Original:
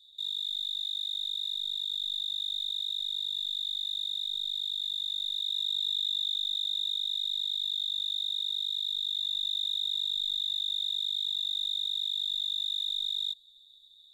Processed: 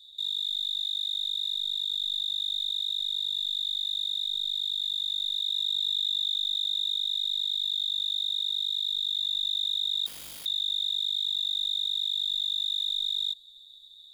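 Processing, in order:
in parallel at 0 dB: brickwall limiter −34.5 dBFS, peak gain reduction 10.5 dB
0:10.06–0:10.46: on the sum: wrap-around overflow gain 37 dB

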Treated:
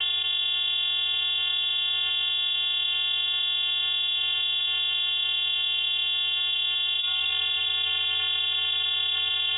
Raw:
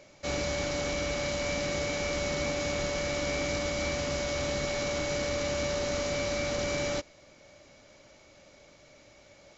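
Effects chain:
variable-slope delta modulation 32 kbit/s
parametric band 310 Hz +7.5 dB 1.6 octaves
reversed playback
upward compression, threshold −45 dBFS
reversed playback
channel vocoder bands 8, square 167 Hz
on a send at −14.5 dB: convolution reverb RT60 1.4 s, pre-delay 7 ms
on the sum: voice inversion scrambler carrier 3,600 Hz
envelope flattener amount 100%

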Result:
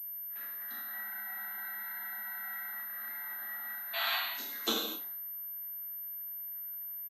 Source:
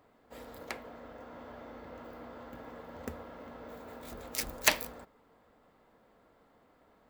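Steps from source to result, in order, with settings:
frequency inversion band by band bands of 2,000 Hz
0:00.89–0:02.67: comb filter 5.3 ms, depth 86%
0:03.20–0:03.64: parametric band 190 Hz +5.5 dB 2.2 octaves
output level in coarse steps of 12 dB
flanger swept by the level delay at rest 9.2 ms, full sweep at −38.5 dBFS
frequency shifter +190 Hz
0:03.93–0:04.17: sound drawn into the spectrogram noise 610–4,600 Hz −34 dBFS
on a send: ambience of single reflections 31 ms −7.5 dB, 79 ms −17 dB
on the sum: reverb whose tail is shaped and stops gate 290 ms falling, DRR −5.5 dB
surface crackle 22 per second −52 dBFS
switching amplifier with a slow clock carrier 13,000 Hz
level −5 dB

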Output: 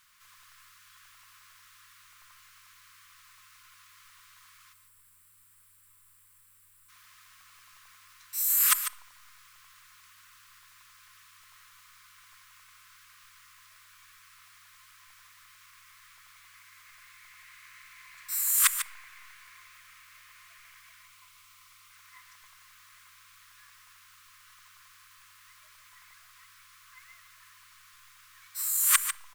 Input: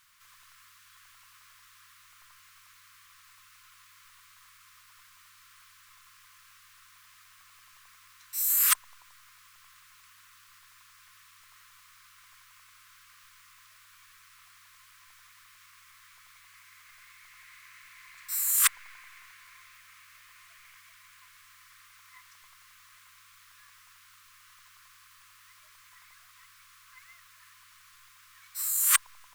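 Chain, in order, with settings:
0:04.73–0:06.89: gain on a spectral selection 600–7,300 Hz −14 dB
0:21.05–0:21.91: parametric band 1,700 Hz −11 dB 0.32 octaves
single-tap delay 147 ms −10 dB
on a send at −16.5 dB: convolution reverb RT60 0.85 s, pre-delay 5 ms

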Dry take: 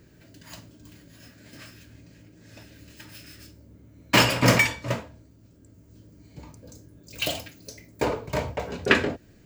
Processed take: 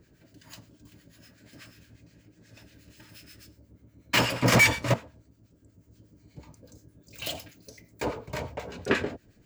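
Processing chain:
0:04.52–0:04.94: leveller curve on the samples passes 3
two-band tremolo in antiphase 8.3 Hz, depth 70%, crossover 1,100 Hz
level −2 dB

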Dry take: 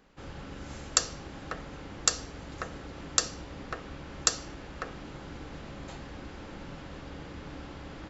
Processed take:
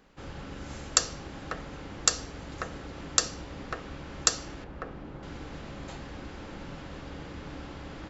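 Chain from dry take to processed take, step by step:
0:04.64–0:05.23: low-pass filter 1,100 Hz 6 dB per octave
level +1.5 dB

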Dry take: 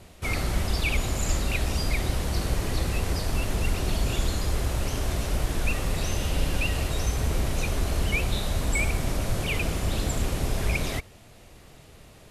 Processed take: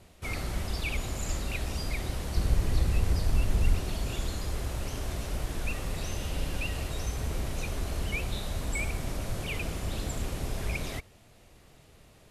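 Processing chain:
0:02.37–0:03.80: low-shelf EQ 160 Hz +9.5 dB
level −6.5 dB

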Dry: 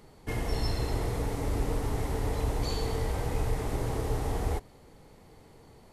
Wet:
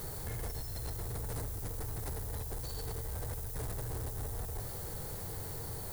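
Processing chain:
graphic EQ with 15 bands 100 Hz +6 dB, 250 Hz −12 dB, 1,600 Hz +10 dB, 4,000 Hz +7 dB, 10,000 Hz +10 dB
compressor whose output falls as the input rises −35 dBFS, ratio −0.5
background noise blue −48 dBFS
soft clipping −38.5 dBFS, distortion −8 dB
parametric band 2,400 Hz −11 dB 2.5 octaves
level +5 dB

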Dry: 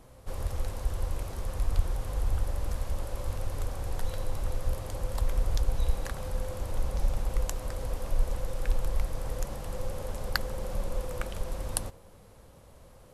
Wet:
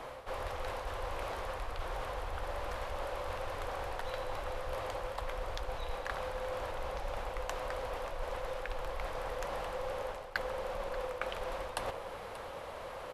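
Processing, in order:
three-way crossover with the lows and the highs turned down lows −19 dB, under 470 Hz, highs −17 dB, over 3,700 Hz
reversed playback
downward compressor 5 to 1, threshold −54 dBFS, peak gain reduction 26 dB
reversed playback
single-tap delay 584 ms −15 dB
level +17.5 dB

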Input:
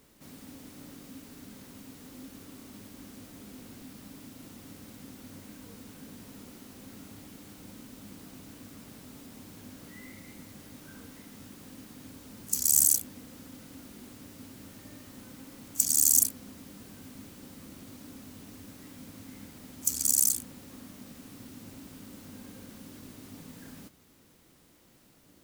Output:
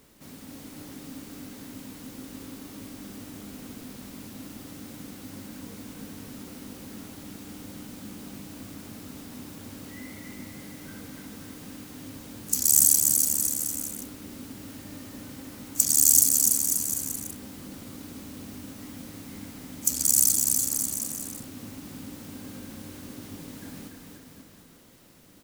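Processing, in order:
bouncing-ball delay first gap 290 ms, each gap 0.85×, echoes 5
level +3.5 dB

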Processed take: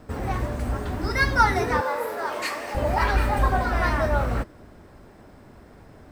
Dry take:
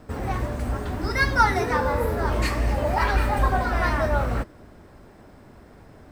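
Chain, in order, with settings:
0:01.81–0:02.75: high-pass filter 500 Hz 12 dB per octave

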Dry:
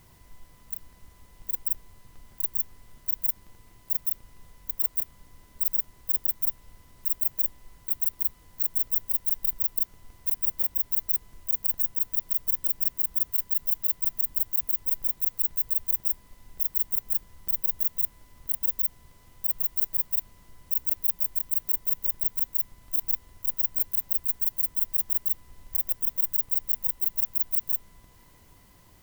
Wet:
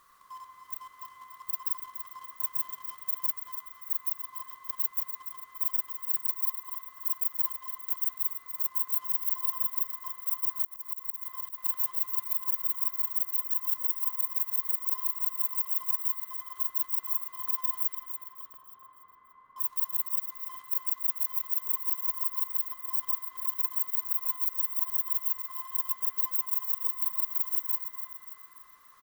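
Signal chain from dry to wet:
neighbouring bands swapped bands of 1,000 Hz
0:17.95–0:19.58: low-pass filter 1,200 Hz 12 dB per octave
in parallel at −8.5 dB: bit reduction 7 bits
on the sum: repeating echo 289 ms, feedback 47%, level −9 dB
on a send at −5 dB: convolution reverb RT60 3.3 s, pre-delay 44 ms
0:10.64–0:11.58: on the sum: volume swells 151 ms
level −6 dB

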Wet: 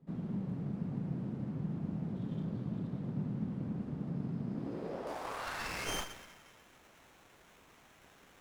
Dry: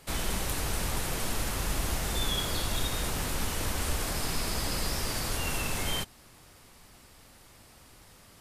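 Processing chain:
high-pass filter sweep 130 Hz → 1,500 Hz, 0:04.72–0:05.92
convolution reverb RT60 2.5 s, pre-delay 109 ms, DRR 7.5 dB
band-pass filter sweep 200 Hz → 5,000 Hz, 0:04.46–0:06.13
parametric band 11,000 Hz −6.5 dB 1.9 octaves, from 0:05.07 +9.5 dB
windowed peak hold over 9 samples
level +1 dB

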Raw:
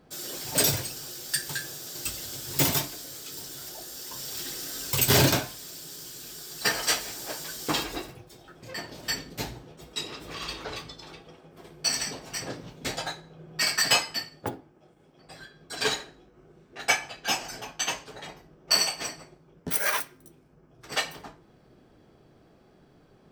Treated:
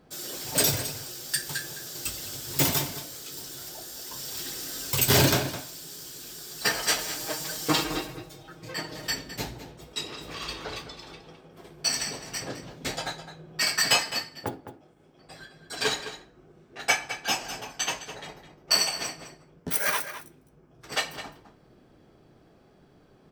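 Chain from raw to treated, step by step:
0:06.98–0:09.07: comb filter 6.4 ms, depth 98%
slap from a distant wall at 36 metres, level −11 dB

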